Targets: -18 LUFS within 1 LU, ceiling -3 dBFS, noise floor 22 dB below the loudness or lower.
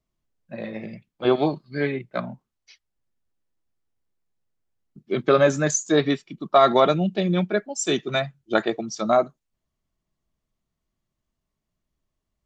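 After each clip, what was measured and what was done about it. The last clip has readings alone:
loudness -22.5 LUFS; peak level -4.5 dBFS; loudness target -18.0 LUFS
-> trim +4.5 dB; peak limiter -3 dBFS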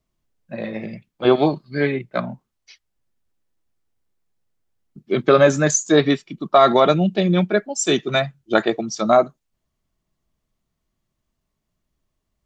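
loudness -18.5 LUFS; peak level -3.0 dBFS; noise floor -77 dBFS

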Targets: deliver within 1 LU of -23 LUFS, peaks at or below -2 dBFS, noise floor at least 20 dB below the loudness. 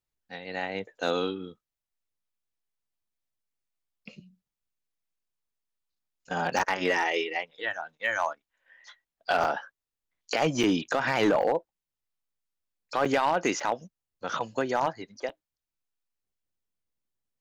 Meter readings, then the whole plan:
clipped samples 0.3%; clipping level -17.0 dBFS; dropouts 7; longest dropout 4.8 ms; loudness -28.5 LUFS; peak level -17.0 dBFS; loudness target -23.0 LUFS
-> clip repair -17 dBFS; interpolate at 6.59/9.44/10.63/11.42/13.05/13.60/15.29 s, 4.8 ms; trim +5.5 dB

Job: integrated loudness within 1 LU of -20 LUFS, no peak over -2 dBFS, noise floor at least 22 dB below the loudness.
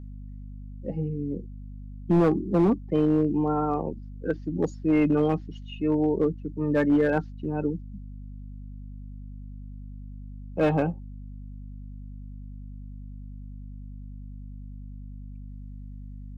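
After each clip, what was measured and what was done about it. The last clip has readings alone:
clipped samples 0.8%; clipping level -15.5 dBFS; hum 50 Hz; highest harmonic 250 Hz; hum level -37 dBFS; loudness -26.0 LUFS; peak level -15.5 dBFS; loudness target -20.0 LUFS
-> clip repair -15.5 dBFS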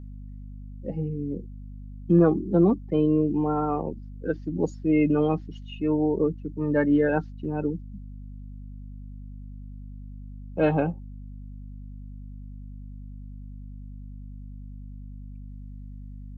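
clipped samples 0.0%; hum 50 Hz; highest harmonic 250 Hz; hum level -37 dBFS
-> hum notches 50/100/150/200/250 Hz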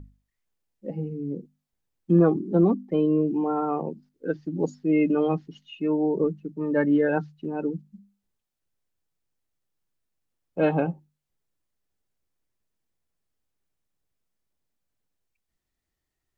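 hum not found; loudness -25.0 LUFS; peak level -8.5 dBFS; loudness target -20.0 LUFS
-> trim +5 dB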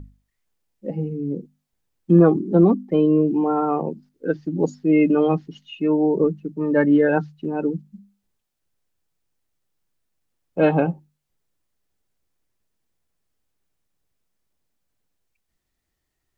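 loudness -20.0 LUFS; peak level -3.5 dBFS; noise floor -78 dBFS

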